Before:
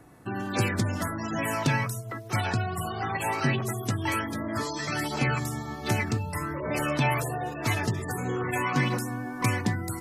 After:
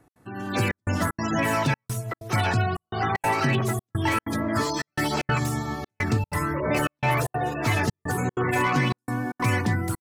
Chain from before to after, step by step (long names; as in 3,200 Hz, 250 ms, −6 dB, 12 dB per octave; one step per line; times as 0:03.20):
brickwall limiter −18.5 dBFS, peak gain reduction 6.5 dB
far-end echo of a speakerphone 310 ms, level −30 dB
automatic gain control gain up to 13 dB
gate pattern "x.xxxxxxx..xx" 190 BPM −60 dB
slew-rate limiting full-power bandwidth 360 Hz
level −7 dB